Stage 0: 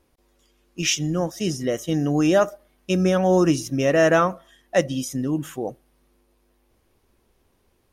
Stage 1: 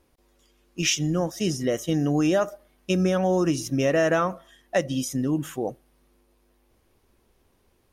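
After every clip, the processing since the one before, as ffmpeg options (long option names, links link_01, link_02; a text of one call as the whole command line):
ffmpeg -i in.wav -af "acompressor=threshold=-18dB:ratio=6" out.wav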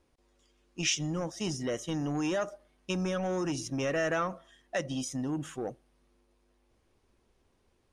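ffmpeg -i in.wav -filter_complex "[0:a]lowpass=frequency=9400:width=0.5412,lowpass=frequency=9400:width=1.3066,acrossover=split=1100[link_01][link_02];[link_01]asoftclip=type=tanh:threshold=-22dB[link_03];[link_03][link_02]amix=inputs=2:normalize=0,volume=-5.5dB" out.wav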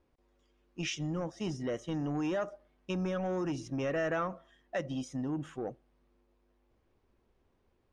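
ffmpeg -i in.wav -af "aemphasis=mode=reproduction:type=75fm,volume=-2.5dB" out.wav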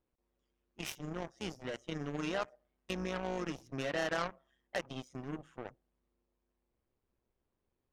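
ffmpeg -i in.wav -af "aeval=exprs='0.0841*(cos(1*acos(clip(val(0)/0.0841,-1,1)))-cos(1*PI/2))+0.00211*(cos(3*acos(clip(val(0)/0.0841,-1,1)))-cos(3*PI/2))+0.015*(cos(7*acos(clip(val(0)/0.0841,-1,1)))-cos(7*PI/2))':channel_layout=same,tremolo=f=130:d=0.621,volume=1dB" out.wav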